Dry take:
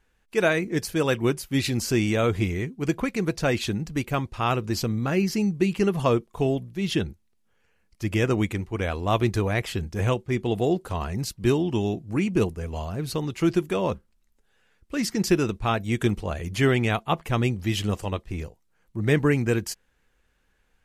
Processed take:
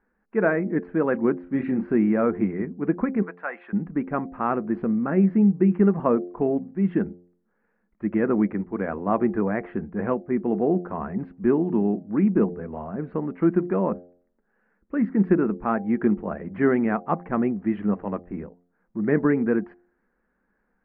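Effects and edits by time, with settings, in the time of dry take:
0:01.43–0:01.85: double-tracking delay 31 ms −6.5 dB
0:03.22–0:03.73: flat-topped band-pass 2,100 Hz, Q 0.55
whole clip: Butterworth low-pass 1,800 Hz 36 dB per octave; low shelf with overshoot 150 Hz −9.5 dB, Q 3; hum removal 88.25 Hz, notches 9

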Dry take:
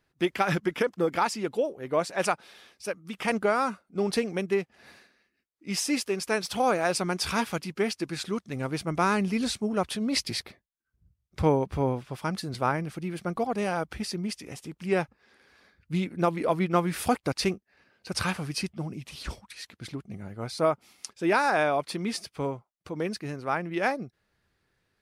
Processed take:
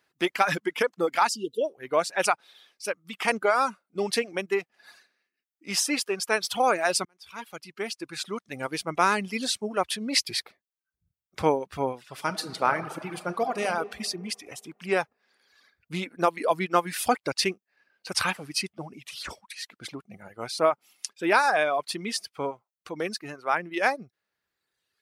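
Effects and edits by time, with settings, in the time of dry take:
0:01.30–0:01.61: time-frequency box erased 480–2,700 Hz
0:07.05–0:08.61: fade in
0:12.02–0:13.66: thrown reverb, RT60 2.3 s, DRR 3.5 dB
whole clip: high-pass filter 580 Hz 6 dB per octave; reverb reduction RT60 1.3 s; level +5 dB

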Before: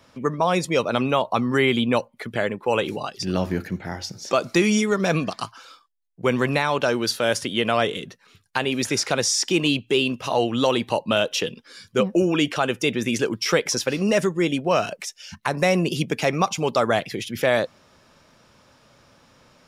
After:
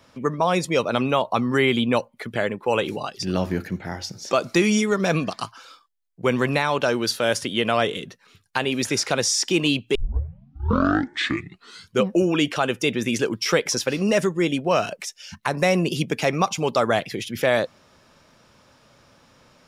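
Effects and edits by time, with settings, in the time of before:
0:09.95: tape start 2.04 s

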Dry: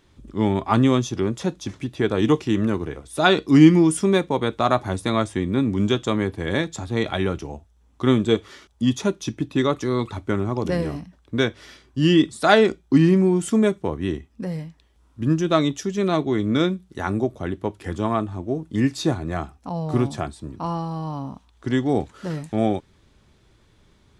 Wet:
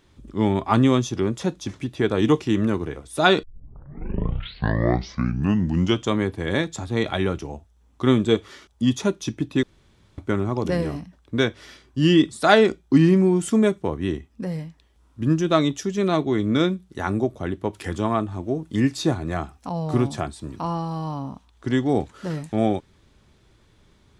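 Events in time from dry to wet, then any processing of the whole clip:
0:03.43: tape start 2.73 s
0:09.63–0:10.18: fill with room tone
0:17.73–0:21.14: one half of a high-frequency compander encoder only

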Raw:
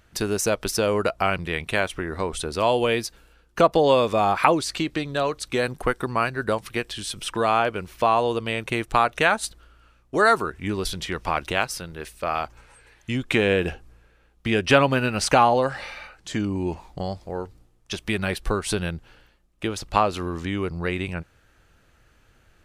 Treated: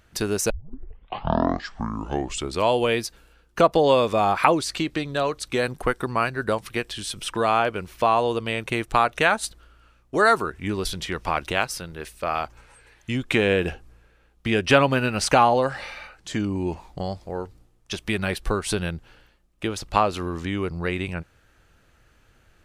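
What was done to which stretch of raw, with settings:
0:00.50: tape start 2.20 s

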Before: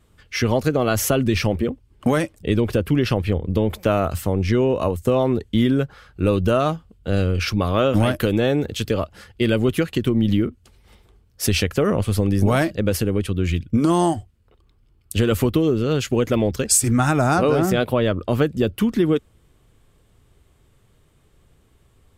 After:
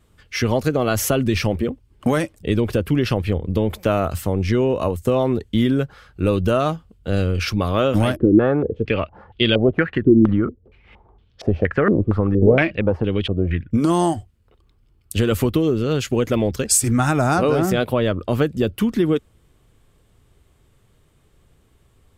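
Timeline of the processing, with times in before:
0:08.16–0:13.71: low-pass on a step sequencer 4.3 Hz 330–3,400 Hz

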